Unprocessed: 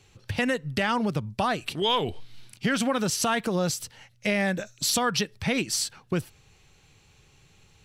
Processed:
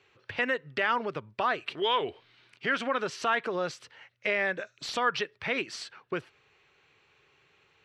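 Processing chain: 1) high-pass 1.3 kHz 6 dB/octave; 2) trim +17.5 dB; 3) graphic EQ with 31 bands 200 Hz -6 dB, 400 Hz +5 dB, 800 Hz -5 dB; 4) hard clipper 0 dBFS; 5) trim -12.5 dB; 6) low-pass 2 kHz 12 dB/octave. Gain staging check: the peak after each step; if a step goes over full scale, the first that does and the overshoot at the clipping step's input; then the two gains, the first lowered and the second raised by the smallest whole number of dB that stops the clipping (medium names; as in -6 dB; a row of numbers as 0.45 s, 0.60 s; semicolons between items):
-12.5 dBFS, +5.0 dBFS, +5.0 dBFS, 0.0 dBFS, -12.5 dBFS, -14.5 dBFS; step 2, 5.0 dB; step 2 +12.5 dB, step 5 -7.5 dB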